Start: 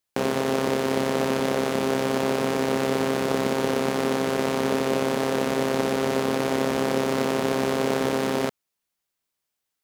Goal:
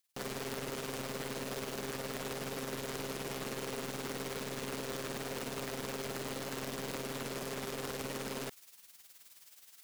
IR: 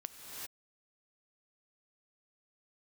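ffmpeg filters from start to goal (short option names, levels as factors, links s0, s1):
-af "tiltshelf=f=1400:g=-5.5,alimiter=limit=0.224:level=0:latency=1:release=15,areverse,acompressor=mode=upward:threshold=0.0158:ratio=2.5,areverse,aeval=exprs='(mod(12.6*val(0)+1,2)-1)/12.6':c=same,tremolo=f=19:d=0.62,asoftclip=type=tanh:threshold=0.0211"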